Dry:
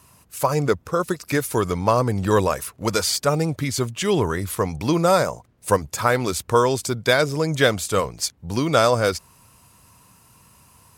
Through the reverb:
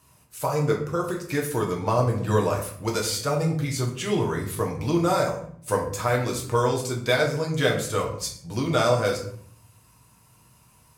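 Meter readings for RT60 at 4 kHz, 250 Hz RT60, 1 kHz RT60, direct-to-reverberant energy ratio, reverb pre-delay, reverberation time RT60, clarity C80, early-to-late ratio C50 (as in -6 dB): 0.40 s, 0.85 s, 0.55 s, -1.0 dB, 6 ms, 0.55 s, 10.5 dB, 7.5 dB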